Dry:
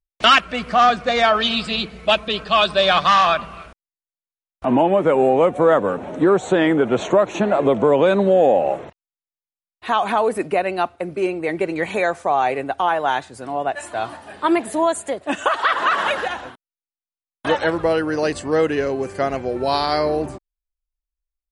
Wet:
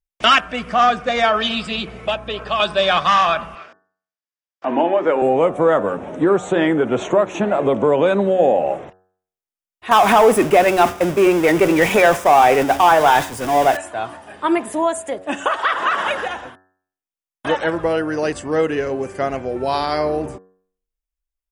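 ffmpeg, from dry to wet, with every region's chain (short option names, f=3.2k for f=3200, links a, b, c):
-filter_complex "[0:a]asettb=1/sr,asplit=3[a][b][c];[a]atrim=end=1.874[d];[b]atrim=start=1.87:end=2.6,asetpts=PTS-STARTPTS,afade=t=in:d=0.004:c=qsin,afade=t=out:st=0.726:d=0.004:c=qsin,equalizer=f=630:w=0.36:g=7,acrossover=split=420|1400|5200[e][f][g][h];[e]acompressor=threshold=-38dB:ratio=3[i];[f]acompressor=threshold=-25dB:ratio=3[j];[g]acompressor=threshold=-28dB:ratio=3[k];[h]acompressor=threshold=-45dB:ratio=3[l];[i][j][k][l]amix=inputs=4:normalize=0,aeval=exprs='val(0)+0.0141*(sin(2*PI*60*n/s)+sin(2*PI*2*60*n/s)/2+sin(2*PI*3*60*n/s)/3+sin(2*PI*4*60*n/s)/4+sin(2*PI*5*60*n/s)/5)':c=same[m];[c]atrim=start=2.596[n];[d][m]acrossfade=d=0.004:c1=hsin:c2=qsin[o];[o][n]acrossfade=d=0.004:c1=qsin:c2=hsin,asettb=1/sr,asplit=3[p][q][r];[p]atrim=end=3.554[s];[q]atrim=start=3.55:end=5.22,asetpts=PTS-STARTPTS,afade=t=in:d=0.004:c=qsin,afade=t=out:st=1.666:d=0.004:c=qsin,highpass=f=200:w=0.5412,highpass=f=200:w=1.3066,equalizer=f=200:t=q:w=4:g=-9,equalizer=f=1.7k:t=q:w=4:g=5,equalizer=f=4.7k:t=q:w=4:g=6,lowpass=f=6.4k:w=0.5412,lowpass=f=6.4k:w=1.3066,bandreject=f=50:t=h:w=6,bandreject=f=100:t=h:w=6,bandreject=f=150:t=h:w=6,bandreject=f=200:t=h:w=6,bandreject=f=250:t=h:w=6,bandreject=f=300:t=h:w=6,bandreject=f=350:t=h:w=6,bandreject=f=400:t=h:w=6,bandreject=f=450:t=h:w=6[t];[r]atrim=start=5.216[u];[s][t]acrossfade=d=0.004:c1=hsin:c2=qsin[v];[v][u]acrossfade=d=0.004:c1=qsin:c2=hsin,asettb=1/sr,asplit=3[w][x][y];[w]atrim=end=9.914[z];[x]atrim=start=9.91:end=13.77,asetpts=PTS-STARTPTS,afade=t=in:d=0.004:c=qsin,afade=t=out:st=3.856:d=0.004:c=qsin,aeval=exprs='val(0)+0.5*0.0531*sgn(val(0))':c=same,agate=range=-33dB:threshold=-24dB:ratio=3:release=100:detection=peak,acontrast=85[aa];[y]atrim=start=13.766[ab];[z][aa]acrossfade=d=0.004:c1=hsin:c2=qsin[ac];[ac][ab]acrossfade=d=0.004:c1=qsin:c2=hsin,equalizer=f=4.2k:w=7.4:g=-11,bandreject=f=93.32:t=h:w=4,bandreject=f=186.64:t=h:w=4,bandreject=f=279.96:t=h:w=4,bandreject=f=373.28:t=h:w=4,bandreject=f=466.6:t=h:w=4,bandreject=f=559.92:t=h:w=4,bandreject=f=653.24:t=h:w=4,bandreject=f=746.56:t=h:w=4,bandreject=f=839.88:t=h:w=4,bandreject=f=933.2:t=h:w=4,bandreject=f=1.02652k:t=h:w=4,bandreject=f=1.11984k:t=h:w=4,bandreject=f=1.21316k:t=h:w=4,bandreject=f=1.30648k:t=h:w=4,bandreject=f=1.3998k:t=h:w=4,bandreject=f=1.49312k:t=h:w=4,bandreject=f=1.58644k:t=h:w=4,bandreject=f=1.67976k:t=h:w=4,bandreject=f=1.77308k:t=h:w=4"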